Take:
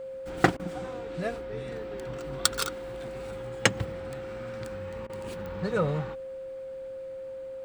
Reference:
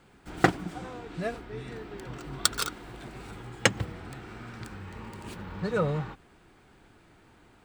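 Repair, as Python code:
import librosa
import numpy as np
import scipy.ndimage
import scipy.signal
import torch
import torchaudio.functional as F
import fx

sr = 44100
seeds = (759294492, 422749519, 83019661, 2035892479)

y = fx.fix_declick_ar(x, sr, threshold=10.0)
y = fx.notch(y, sr, hz=530.0, q=30.0)
y = fx.fix_interpolate(y, sr, at_s=(0.57, 5.07), length_ms=24.0)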